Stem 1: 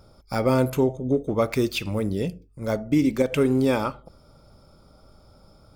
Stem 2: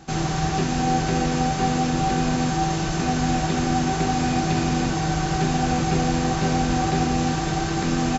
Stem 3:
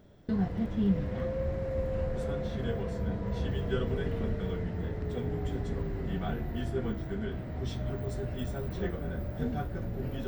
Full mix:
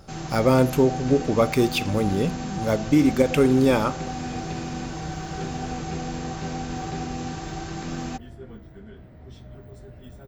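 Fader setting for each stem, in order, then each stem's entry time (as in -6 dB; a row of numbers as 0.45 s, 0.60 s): +2.5 dB, -9.5 dB, -9.0 dB; 0.00 s, 0.00 s, 1.65 s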